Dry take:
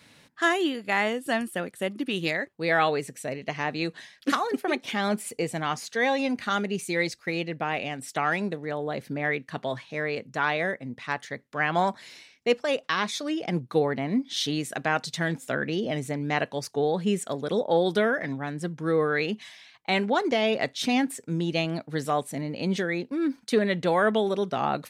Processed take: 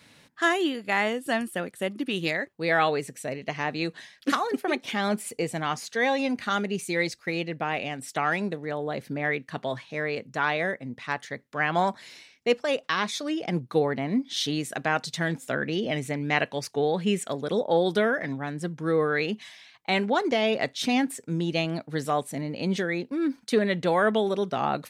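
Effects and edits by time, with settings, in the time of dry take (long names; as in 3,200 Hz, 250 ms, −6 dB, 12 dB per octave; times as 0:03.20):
0:15.75–0:17.32: parametric band 2,400 Hz +5.5 dB 0.97 octaves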